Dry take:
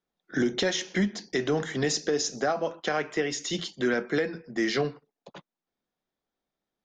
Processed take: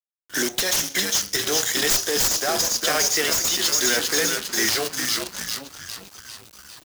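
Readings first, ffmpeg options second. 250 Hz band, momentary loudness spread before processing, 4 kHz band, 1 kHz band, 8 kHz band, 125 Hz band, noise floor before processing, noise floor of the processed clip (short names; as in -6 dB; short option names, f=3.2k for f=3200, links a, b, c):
-3.0 dB, 4 LU, +12.5 dB, +4.5 dB, +16.5 dB, -4.0 dB, under -85 dBFS, -54 dBFS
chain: -filter_complex "[0:a]aemphasis=mode=production:type=riaa,bandreject=f=69.98:t=h:w=4,bandreject=f=139.96:t=h:w=4,bandreject=f=209.94:t=h:w=4,bandreject=f=279.92:t=h:w=4,bandreject=f=349.9:t=h:w=4,bandreject=f=419.88:t=h:w=4,bandreject=f=489.86:t=h:w=4,bandreject=f=559.84:t=h:w=4,bandreject=f=629.82:t=h:w=4,bandreject=f=699.8:t=h:w=4,bandreject=f=769.78:t=h:w=4,bandreject=f=839.76:t=h:w=4,bandreject=f=909.74:t=h:w=4,bandreject=f=979.72:t=h:w=4,bandreject=f=1.0497k:t=h:w=4,bandreject=f=1.11968k:t=h:w=4,bandreject=f=1.18966k:t=h:w=4,bandreject=f=1.25964k:t=h:w=4,bandreject=f=1.32962k:t=h:w=4,asplit=2[a][b];[b]asplit=8[c][d][e][f][g][h][i][j];[c]adelay=401,afreqshift=-82,volume=-6.5dB[k];[d]adelay=802,afreqshift=-164,volume=-10.8dB[l];[e]adelay=1203,afreqshift=-246,volume=-15.1dB[m];[f]adelay=1604,afreqshift=-328,volume=-19.4dB[n];[g]adelay=2005,afreqshift=-410,volume=-23.7dB[o];[h]adelay=2406,afreqshift=-492,volume=-28dB[p];[i]adelay=2807,afreqshift=-574,volume=-32.3dB[q];[j]adelay=3208,afreqshift=-656,volume=-36.6dB[r];[k][l][m][n][o][p][q][r]amix=inputs=8:normalize=0[s];[a][s]amix=inputs=2:normalize=0,acrusher=bits=6:dc=4:mix=0:aa=0.000001,bass=f=250:g=-6,treble=f=4k:g=7,aeval=exprs='0.944*(cos(1*acos(clip(val(0)/0.944,-1,1)))-cos(1*PI/2))+0.237*(cos(4*acos(clip(val(0)/0.944,-1,1)))-cos(4*PI/2))+0.335*(cos(7*acos(clip(val(0)/0.944,-1,1)))-cos(7*PI/2))':c=same,highpass=45,asoftclip=type=tanh:threshold=-9dB,alimiter=limit=-14dB:level=0:latency=1:release=218,volume=2.5dB"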